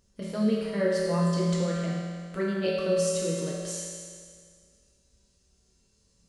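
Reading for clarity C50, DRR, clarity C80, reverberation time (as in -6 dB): -1.5 dB, -6.5 dB, 0.5 dB, 2.0 s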